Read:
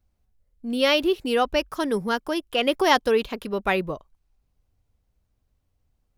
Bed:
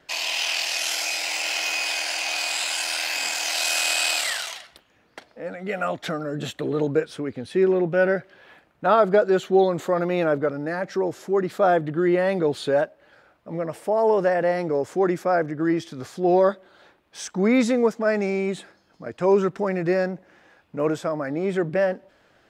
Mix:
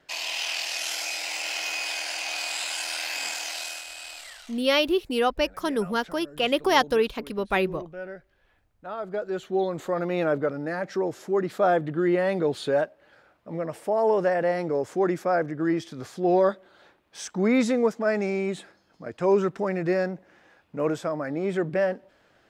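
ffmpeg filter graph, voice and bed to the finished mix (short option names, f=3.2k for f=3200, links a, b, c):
-filter_complex "[0:a]adelay=3850,volume=-1.5dB[a];[1:a]volume=10.5dB,afade=t=out:st=3.3:d=0.55:silence=0.223872,afade=t=in:st=8.94:d=1.35:silence=0.177828[b];[a][b]amix=inputs=2:normalize=0"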